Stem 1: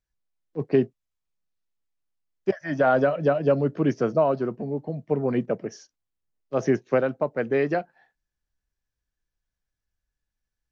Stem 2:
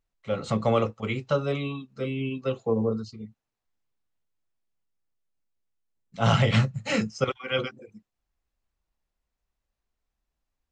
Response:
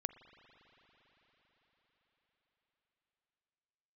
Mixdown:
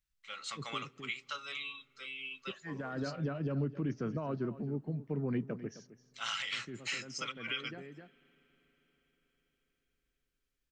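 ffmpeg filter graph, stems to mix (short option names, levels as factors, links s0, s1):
-filter_complex "[0:a]highshelf=f=2800:g=-9.5,alimiter=limit=0.15:level=0:latency=1:release=47,volume=0.668,asplit=3[s0][s1][s2];[s1]volume=0.126[s3];[s2]volume=0.178[s4];[1:a]highpass=1300,volume=0.891,asplit=3[s5][s6][s7];[s6]volume=0.168[s8];[s7]apad=whole_len=472654[s9];[s0][s9]sidechaincompress=threshold=0.00501:ratio=8:attack=24:release=421[s10];[2:a]atrim=start_sample=2205[s11];[s3][s8]amix=inputs=2:normalize=0[s12];[s12][s11]afir=irnorm=-1:irlink=0[s13];[s4]aecho=0:1:261:1[s14];[s10][s5][s13][s14]amix=inputs=4:normalize=0,equalizer=f=630:t=o:w=1.5:g=-14,alimiter=level_in=1.19:limit=0.0631:level=0:latency=1:release=163,volume=0.841"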